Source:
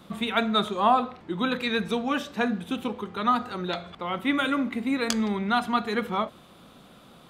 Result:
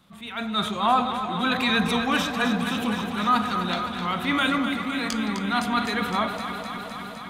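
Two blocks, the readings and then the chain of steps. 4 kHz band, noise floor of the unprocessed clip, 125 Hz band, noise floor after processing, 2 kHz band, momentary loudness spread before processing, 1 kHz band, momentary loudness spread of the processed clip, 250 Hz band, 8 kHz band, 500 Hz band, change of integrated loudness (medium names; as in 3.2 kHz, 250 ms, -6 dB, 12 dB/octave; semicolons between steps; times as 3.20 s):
+4.5 dB, -52 dBFS, +4.5 dB, -37 dBFS, +4.5 dB, 9 LU, +2.0 dB, 9 LU, +1.5 dB, +2.5 dB, -1.5 dB, +2.0 dB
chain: peaking EQ 420 Hz -9.5 dB 1.5 oct; level rider gain up to 15.5 dB; transient shaper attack -6 dB, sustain +3 dB; on a send: echo whose repeats swap between lows and highs 128 ms, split 810 Hz, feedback 88%, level -7 dB; on the sum: trim -6 dB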